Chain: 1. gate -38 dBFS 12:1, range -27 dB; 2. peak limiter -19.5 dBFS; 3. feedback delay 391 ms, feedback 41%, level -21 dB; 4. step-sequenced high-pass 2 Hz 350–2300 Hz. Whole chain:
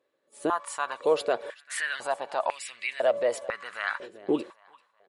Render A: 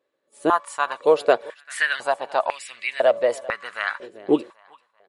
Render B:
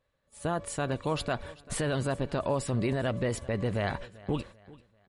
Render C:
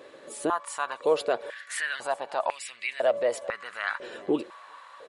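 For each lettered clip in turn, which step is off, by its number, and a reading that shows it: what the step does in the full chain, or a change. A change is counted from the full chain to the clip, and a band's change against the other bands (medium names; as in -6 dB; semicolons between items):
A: 2, mean gain reduction 3.0 dB; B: 4, 250 Hz band +7.5 dB; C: 1, momentary loudness spread change +1 LU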